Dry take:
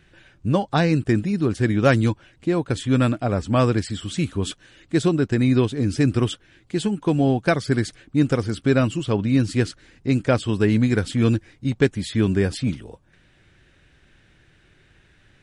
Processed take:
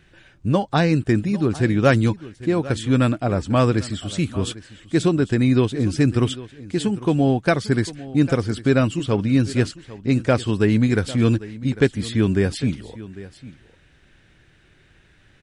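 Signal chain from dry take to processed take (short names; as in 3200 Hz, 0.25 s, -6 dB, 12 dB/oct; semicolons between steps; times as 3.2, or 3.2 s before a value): echo 0.799 s -17.5 dB; gain +1 dB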